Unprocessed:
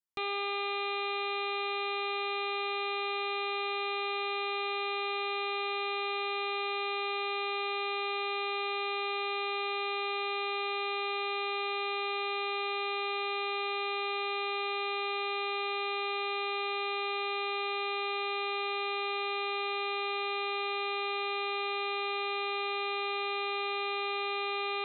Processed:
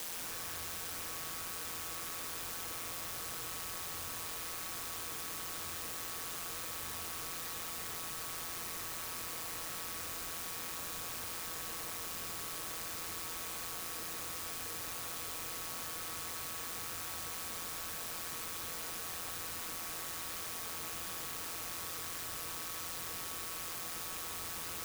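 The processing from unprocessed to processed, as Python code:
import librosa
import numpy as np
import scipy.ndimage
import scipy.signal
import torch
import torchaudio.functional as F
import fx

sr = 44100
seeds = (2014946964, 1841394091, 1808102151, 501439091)

y = fx.tracing_dist(x, sr, depth_ms=0.46)
y = scipy.signal.sosfilt(scipy.signal.butter(2, 850.0, 'highpass', fs=sr, output='sos'), y)
y = fx.peak_eq(y, sr, hz=1700.0, db=-9.5, octaves=2.1)
y = fx.notch(y, sr, hz=2500.0, q=7.0)
y = 10.0 ** (-38.0 / 20.0) * (np.abs((y / 10.0 ** (-38.0 / 20.0) + 3.0) % 4.0 - 2.0) - 1.0)
y = fx.quant_dither(y, sr, seeds[0], bits=6, dither='triangular')
y = y * np.sin(2.0 * np.pi * 85.0 * np.arange(len(y)) / sr)
y = y + 10.0 ** (-4.5 / 20.0) * np.pad(y, (int(735 * sr / 1000.0), 0))[:len(y)]
y = fx.rev_plate(y, sr, seeds[1], rt60_s=0.73, hf_ratio=0.25, predelay_ms=110, drr_db=-1.0)
y = fx.env_flatten(y, sr, amount_pct=100)
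y = F.gain(torch.from_numpy(y), -7.0).numpy()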